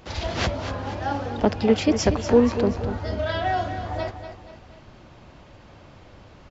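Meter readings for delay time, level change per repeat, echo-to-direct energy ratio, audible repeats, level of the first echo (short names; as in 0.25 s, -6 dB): 0.24 s, -6.5 dB, -9.0 dB, 3, -10.0 dB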